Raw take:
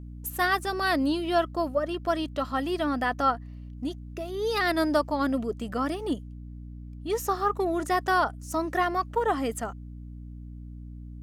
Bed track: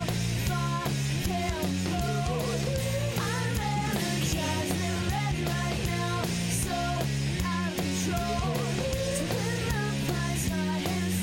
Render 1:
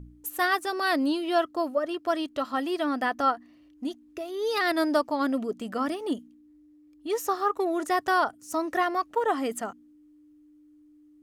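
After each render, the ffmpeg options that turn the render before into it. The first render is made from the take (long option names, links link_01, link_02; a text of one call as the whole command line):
ffmpeg -i in.wav -af "bandreject=frequency=60:width_type=h:width=4,bandreject=frequency=120:width_type=h:width=4,bandreject=frequency=180:width_type=h:width=4,bandreject=frequency=240:width_type=h:width=4" out.wav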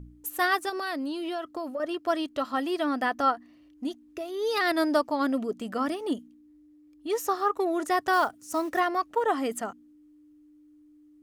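ffmpeg -i in.wav -filter_complex "[0:a]asettb=1/sr,asplit=3[link_01][link_02][link_03];[link_01]atrim=end=0.694[link_04];[link_02]atrim=start=0.69:end=1.8,asetpts=PTS-STARTPTS,afade=type=in:duration=0.004:curve=qsin,afade=type=out:start_time=1.106:duration=0.004:curve=qsin,acompressor=threshold=-29dB:ratio=6:attack=3.2:release=140:knee=1:detection=peak[link_05];[link_03]atrim=start=1.796[link_06];[link_04][link_05]acrossfade=duration=0.004:curve1=hsin:curve2=qsin[link_07];[link_07][link_06]acrossfade=duration=0.004:curve1=qsin:curve2=hsin,asettb=1/sr,asplit=3[link_08][link_09][link_10];[link_08]atrim=end=8.134[link_11];[link_09]atrim=start=8.13:end=8.8,asetpts=PTS-STARTPTS,afade=type=in:duration=0.004:curve=qsin,afade=type=out:start_time=0.666:duration=0.004:curve=qsin,acrusher=bits=6:mode=log:mix=0:aa=0.000001[link_12];[link_10]atrim=start=8.796[link_13];[link_11][link_12]acrossfade=duration=0.004:curve1=hsin:curve2=qsin[link_14];[link_14][link_13]acrossfade=duration=0.004:curve1=qsin:curve2=hsin" out.wav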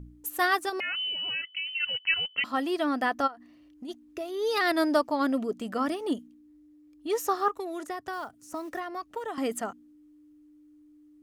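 ffmpeg -i in.wav -filter_complex "[0:a]asettb=1/sr,asplit=3[link_01][link_02][link_03];[link_01]atrim=end=0.804[link_04];[link_02]atrim=start=0.8:end=2.44,asetpts=PTS-STARTPTS,afade=type=in:duration=0.004:curve=qsin,afade=type=out:start_time=1.636:duration=0.004:curve=qsin,lowpass=frequency=2800:width_type=q:width=0.5098,lowpass=frequency=2800:width_type=q:width=0.6013,lowpass=frequency=2800:width_type=q:width=0.9,lowpass=frequency=2800:width_type=q:width=2.563,afreqshift=-3300[link_05];[link_03]atrim=start=2.436[link_06];[link_04][link_05]acrossfade=duration=0.004:curve1=hsin:curve2=qsin[link_07];[link_07][link_06]acrossfade=duration=0.004:curve1=qsin:curve2=hsin,asplit=3[link_08][link_09][link_10];[link_08]afade=type=out:start_time=3.26:duration=0.02[link_11];[link_09]acompressor=threshold=-38dB:ratio=6:attack=3.2:release=140:knee=1:detection=peak,afade=type=in:start_time=3.26:duration=0.02,afade=type=out:start_time=3.88:duration=0.02[link_12];[link_10]afade=type=in:start_time=3.88:duration=0.02[link_13];[link_11][link_12][link_13]amix=inputs=3:normalize=0,asettb=1/sr,asplit=3[link_14][link_15][link_16];[link_14]atrim=end=7.484[link_17];[link_15]atrim=start=7.48:end=9.38,asetpts=PTS-STARTPTS,afade=type=in:duration=0.004:curve=qsin,afade=type=out:start_time=1.896:duration=0.004:curve=qsin,acrossover=split=210|2100[link_18][link_19][link_20];[link_18]acompressor=threshold=-53dB:ratio=4[link_21];[link_19]acompressor=threshold=-35dB:ratio=4[link_22];[link_20]acompressor=threshold=-50dB:ratio=4[link_23];[link_21][link_22][link_23]amix=inputs=3:normalize=0[link_24];[link_16]atrim=start=9.376[link_25];[link_17][link_24]acrossfade=duration=0.004:curve1=hsin:curve2=qsin[link_26];[link_26][link_25]acrossfade=duration=0.004:curve1=qsin:curve2=hsin" out.wav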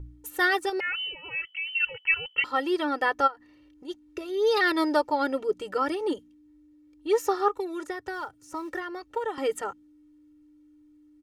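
ffmpeg -i in.wav -af "highshelf=frequency=9300:gain=-11,aecho=1:1:2.2:0.91" out.wav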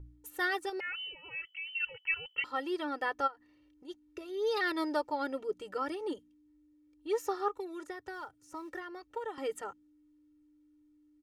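ffmpeg -i in.wav -af "volume=-8.5dB" out.wav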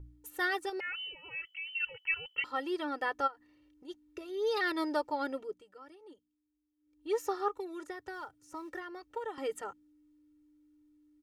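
ffmpeg -i in.wav -filter_complex "[0:a]asplit=3[link_01][link_02][link_03];[link_01]atrim=end=5.66,asetpts=PTS-STARTPTS,afade=type=out:start_time=5.31:duration=0.35:silence=0.133352[link_04];[link_02]atrim=start=5.66:end=6.76,asetpts=PTS-STARTPTS,volume=-17.5dB[link_05];[link_03]atrim=start=6.76,asetpts=PTS-STARTPTS,afade=type=in:duration=0.35:silence=0.133352[link_06];[link_04][link_05][link_06]concat=n=3:v=0:a=1" out.wav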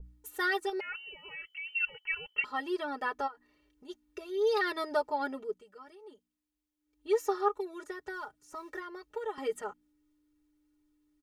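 ffmpeg -i in.wav -af "aecho=1:1:4.8:0.76,adynamicequalizer=threshold=0.00562:dfrequency=1600:dqfactor=0.7:tfrequency=1600:tqfactor=0.7:attack=5:release=100:ratio=0.375:range=1.5:mode=cutabove:tftype=highshelf" out.wav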